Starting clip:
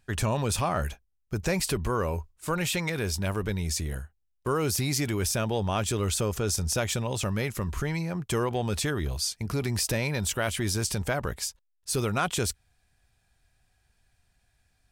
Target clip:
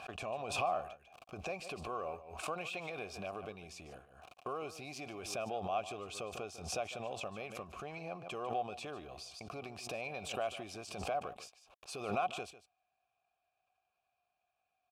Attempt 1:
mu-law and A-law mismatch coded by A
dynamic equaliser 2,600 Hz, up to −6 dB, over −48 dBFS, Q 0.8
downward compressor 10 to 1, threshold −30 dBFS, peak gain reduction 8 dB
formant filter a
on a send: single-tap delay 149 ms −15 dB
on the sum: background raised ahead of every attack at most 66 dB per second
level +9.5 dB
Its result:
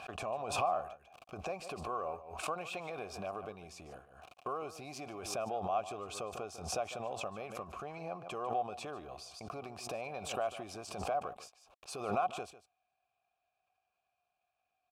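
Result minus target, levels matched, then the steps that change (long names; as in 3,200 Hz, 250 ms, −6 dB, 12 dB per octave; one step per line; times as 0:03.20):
2,000 Hz band −3.5 dB
change: dynamic equaliser 1,100 Hz, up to −6 dB, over −48 dBFS, Q 0.8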